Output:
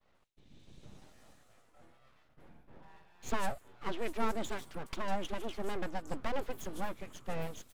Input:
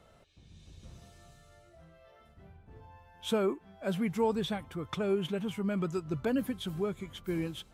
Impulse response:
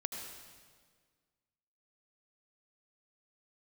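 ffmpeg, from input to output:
-filter_complex "[0:a]acrossover=split=5200[s0][s1];[s1]adelay=150[s2];[s0][s2]amix=inputs=2:normalize=0,aeval=exprs='abs(val(0))':c=same,agate=range=0.0224:threshold=0.002:ratio=3:detection=peak,volume=0.891"

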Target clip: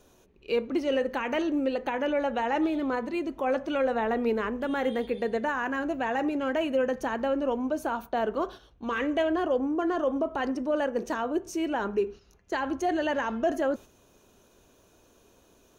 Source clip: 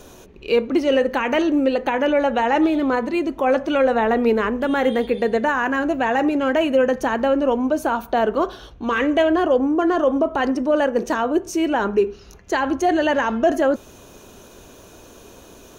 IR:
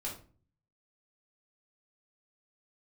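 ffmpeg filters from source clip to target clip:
-af "agate=range=0.447:threshold=0.0251:ratio=16:detection=peak,volume=0.355"

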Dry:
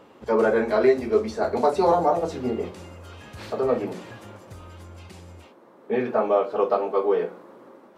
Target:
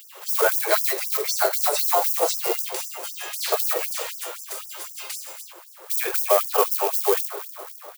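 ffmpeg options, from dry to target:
-filter_complex "[0:a]acontrast=74,asplit=2[s0][s1];[s1]aecho=0:1:288|576|864|1152|1440:0.119|0.0677|0.0386|0.022|0.0125[s2];[s0][s2]amix=inputs=2:normalize=0,acompressor=threshold=0.178:ratio=6,asplit=2[s3][s4];[s4]acrusher=bits=3:mode=log:mix=0:aa=0.000001,volume=0.501[s5];[s3][s5]amix=inputs=2:normalize=0,aemphasis=mode=production:type=riaa,afftfilt=real='re*gte(b*sr/1024,310*pow(5100/310,0.5+0.5*sin(2*PI*3.9*pts/sr)))':imag='im*gte(b*sr/1024,310*pow(5100/310,0.5+0.5*sin(2*PI*3.9*pts/sr)))':win_size=1024:overlap=0.75,volume=0.891"

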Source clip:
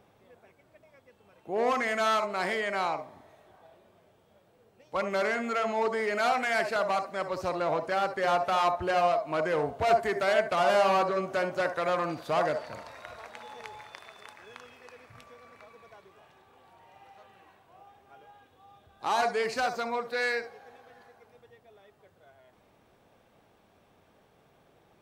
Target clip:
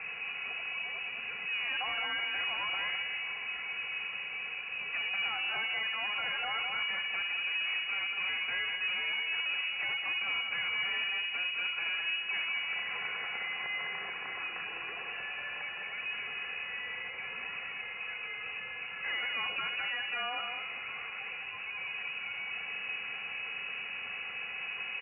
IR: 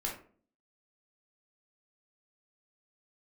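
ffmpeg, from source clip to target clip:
-filter_complex "[0:a]aeval=exprs='val(0)+0.5*0.01*sgn(val(0))':c=same,highpass=f=85:w=0.5412,highpass=f=85:w=1.3066,equalizer=f=350:t=o:w=0.6:g=12,aecho=1:1:3.3:0.68,acompressor=threshold=0.0282:ratio=6,aeval=exprs='0.112*(cos(1*acos(clip(val(0)/0.112,-1,1)))-cos(1*PI/2))+0.0282*(cos(4*acos(clip(val(0)/0.112,-1,1)))-cos(4*PI/2))':c=same,asoftclip=type=tanh:threshold=0.0316,aecho=1:1:207:0.501,asplit=2[s0][s1];[1:a]atrim=start_sample=2205[s2];[s1][s2]afir=irnorm=-1:irlink=0,volume=0.0668[s3];[s0][s3]amix=inputs=2:normalize=0,lowpass=f=2500:t=q:w=0.5098,lowpass=f=2500:t=q:w=0.6013,lowpass=f=2500:t=q:w=0.9,lowpass=f=2500:t=q:w=2.563,afreqshift=-2900"

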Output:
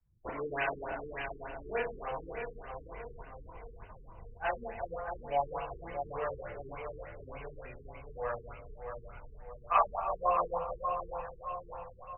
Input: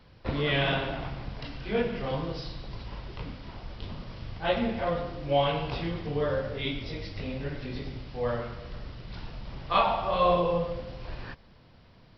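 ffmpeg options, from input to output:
-filter_complex "[0:a]asubboost=boost=9.5:cutoff=85,acrossover=split=480[s0][s1];[s0]acompressor=threshold=0.02:ratio=10[s2];[s2][s1]amix=inputs=2:normalize=0,afftdn=nr=34:nf=-43,bass=f=250:g=-14,treble=f=4000:g=-10,bandreject=f=550:w=12,asplit=2[s3][s4];[s4]aecho=0:1:627|1254|1881|2508|3135|3762:0.473|0.241|0.123|0.0628|0.032|0.0163[s5];[s3][s5]amix=inputs=2:normalize=0,afftfilt=real='re*lt(b*sr/1024,440*pow(3100/440,0.5+0.5*sin(2*PI*3.4*pts/sr)))':imag='im*lt(b*sr/1024,440*pow(3100/440,0.5+0.5*sin(2*PI*3.4*pts/sr)))':win_size=1024:overlap=0.75"

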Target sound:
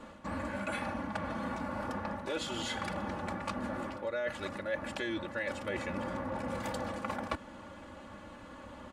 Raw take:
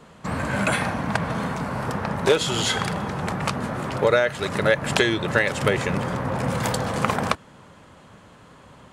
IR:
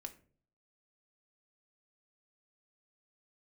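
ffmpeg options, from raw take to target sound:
-af "highshelf=f=3700:g=-7.5,aecho=1:1:3.5:0.83,areverse,acompressor=threshold=0.0224:ratio=6,areverse,volume=0.841"

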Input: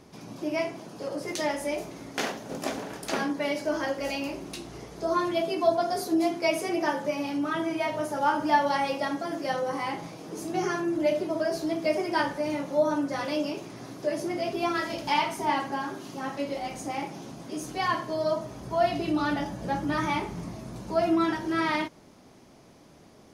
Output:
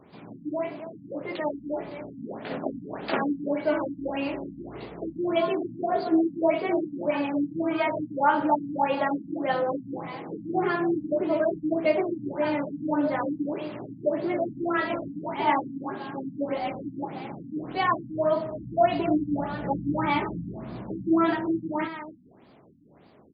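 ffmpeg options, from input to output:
-filter_complex "[0:a]acrossover=split=4400[s0][s1];[s1]acompressor=threshold=0.00112:ratio=4:attack=1:release=60[s2];[s0][s2]amix=inputs=2:normalize=0,highpass=f=110:p=1,asplit=2[s3][s4];[s4]aecho=0:1:271:0.266[s5];[s3][s5]amix=inputs=2:normalize=0,dynaudnorm=f=250:g=17:m=1.5,afftfilt=real='re*lt(b*sr/1024,290*pow(5000/290,0.5+0.5*sin(2*PI*1.7*pts/sr)))':imag='im*lt(b*sr/1024,290*pow(5000/290,0.5+0.5*sin(2*PI*1.7*pts/sr)))':win_size=1024:overlap=0.75"

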